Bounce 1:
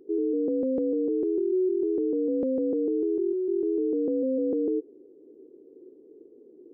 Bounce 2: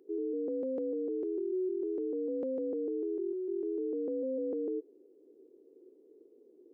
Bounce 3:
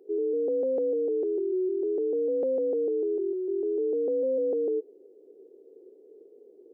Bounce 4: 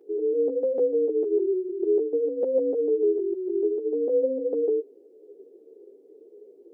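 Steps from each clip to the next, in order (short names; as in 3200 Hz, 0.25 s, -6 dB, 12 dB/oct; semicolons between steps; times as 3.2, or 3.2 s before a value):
HPF 630 Hz 6 dB/oct; gain -2.5 dB
band shelf 570 Hz +9 dB 1.3 oct
ensemble effect; gain +5.5 dB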